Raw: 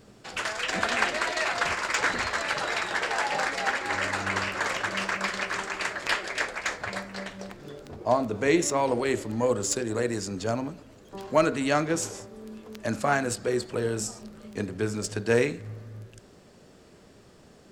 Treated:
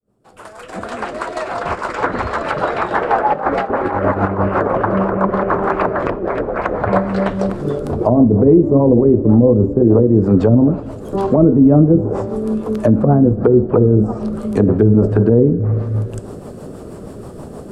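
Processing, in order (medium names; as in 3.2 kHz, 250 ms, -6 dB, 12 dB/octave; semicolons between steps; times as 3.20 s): fade-in on the opening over 5.81 s; low-pass that closes with the level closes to 310 Hz, closed at -24 dBFS; high-order bell 3.4 kHz -14.5 dB 2.4 oct; 3.33–4.48 s: compressor with a negative ratio -38 dBFS, ratio -0.5; rotary cabinet horn 6.3 Hz; two-slope reverb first 0.48 s, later 4.4 s, from -16 dB, DRR 17.5 dB; loudness maximiser +25 dB; trim -1 dB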